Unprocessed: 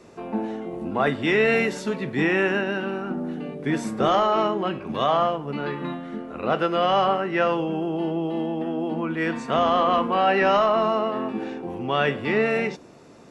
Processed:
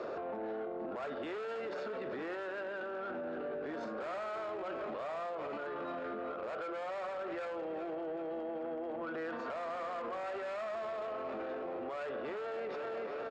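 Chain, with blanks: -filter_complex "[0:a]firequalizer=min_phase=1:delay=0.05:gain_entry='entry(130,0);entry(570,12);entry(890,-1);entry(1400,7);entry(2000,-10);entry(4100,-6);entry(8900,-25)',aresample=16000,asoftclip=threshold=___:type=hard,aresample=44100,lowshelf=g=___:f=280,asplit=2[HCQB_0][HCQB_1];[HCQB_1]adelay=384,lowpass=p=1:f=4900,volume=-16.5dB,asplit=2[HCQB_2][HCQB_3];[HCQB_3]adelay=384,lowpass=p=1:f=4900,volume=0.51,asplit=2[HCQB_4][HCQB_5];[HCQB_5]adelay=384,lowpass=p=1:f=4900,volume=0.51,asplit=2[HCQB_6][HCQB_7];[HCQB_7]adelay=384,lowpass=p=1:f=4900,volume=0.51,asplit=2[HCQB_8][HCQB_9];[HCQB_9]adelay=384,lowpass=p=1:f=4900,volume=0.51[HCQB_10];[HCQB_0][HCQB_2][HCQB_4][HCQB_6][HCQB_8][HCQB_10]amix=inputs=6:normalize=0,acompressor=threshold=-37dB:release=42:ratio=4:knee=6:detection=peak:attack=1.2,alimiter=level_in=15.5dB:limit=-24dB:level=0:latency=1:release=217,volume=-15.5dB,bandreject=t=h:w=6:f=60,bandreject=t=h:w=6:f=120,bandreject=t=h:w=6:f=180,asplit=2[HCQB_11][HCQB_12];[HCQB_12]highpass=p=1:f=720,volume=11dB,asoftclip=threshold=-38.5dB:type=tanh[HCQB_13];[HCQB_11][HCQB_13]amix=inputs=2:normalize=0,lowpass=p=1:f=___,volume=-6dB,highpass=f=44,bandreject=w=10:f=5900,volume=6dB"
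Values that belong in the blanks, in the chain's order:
-13dB, -11.5, 5100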